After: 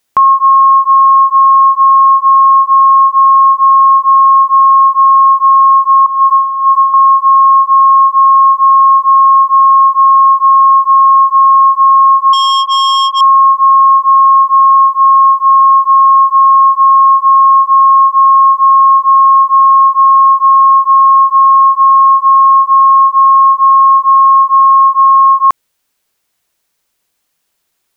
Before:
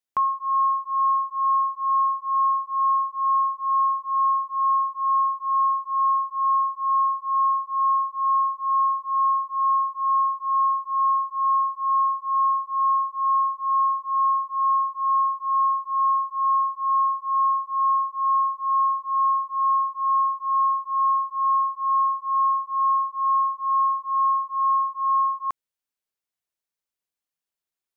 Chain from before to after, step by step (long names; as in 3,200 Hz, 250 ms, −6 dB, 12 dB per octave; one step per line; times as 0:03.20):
0:06.06–0:06.94: compressor whose output falls as the input rises −28 dBFS, ratio −0.5
0:14.75–0:15.59: high-pass filter 1,100 Hz → 1,000 Hz 6 dB per octave
boost into a limiter +24 dB
0:12.33–0:13.21: saturating transformer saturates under 2,200 Hz
level −1 dB